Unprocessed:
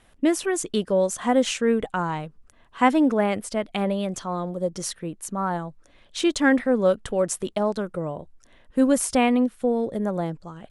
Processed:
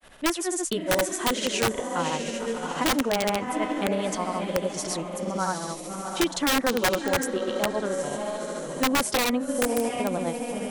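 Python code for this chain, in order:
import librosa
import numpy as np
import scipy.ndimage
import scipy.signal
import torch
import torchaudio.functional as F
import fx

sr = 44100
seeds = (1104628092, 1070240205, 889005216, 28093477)

p1 = fx.low_shelf(x, sr, hz=250.0, db=-7.5)
p2 = p1 + fx.echo_diffused(p1, sr, ms=700, feedback_pct=40, wet_db=-7.0, dry=0)
p3 = fx.granulator(p2, sr, seeds[0], grain_ms=143.0, per_s=14.0, spray_ms=100.0, spread_st=0)
p4 = (np.mod(10.0 ** (15.5 / 20.0) * p3 + 1.0, 2.0) - 1.0) / 10.0 ** (15.5 / 20.0)
y = fx.band_squash(p4, sr, depth_pct=40)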